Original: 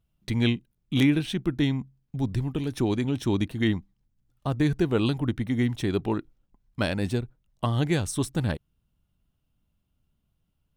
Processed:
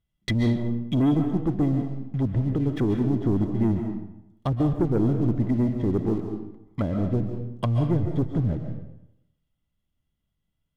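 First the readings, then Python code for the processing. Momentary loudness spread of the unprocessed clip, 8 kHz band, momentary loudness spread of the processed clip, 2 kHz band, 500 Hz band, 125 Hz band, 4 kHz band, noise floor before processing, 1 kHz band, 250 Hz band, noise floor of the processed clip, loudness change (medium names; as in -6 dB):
9 LU, under -10 dB, 10 LU, -8.5 dB, +1.0 dB, +3.5 dB, no reading, -75 dBFS, 0.0 dB, +2.5 dB, -79 dBFS, +2.0 dB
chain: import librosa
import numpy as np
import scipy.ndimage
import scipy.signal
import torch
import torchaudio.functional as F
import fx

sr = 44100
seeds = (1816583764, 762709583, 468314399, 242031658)

y = fx.small_body(x, sr, hz=(2000.0, 3300.0), ring_ms=45, db=16)
y = fx.env_lowpass_down(y, sr, base_hz=410.0, full_db=-23.0)
y = fx.leveller(y, sr, passes=2)
y = fx.rev_freeverb(y, sr, rt60_s=0.83, hf_ratio=0.75, predelay_ms=100, drr_db=5.0)
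y = y * librosa.db_to_amplitude(-2.5)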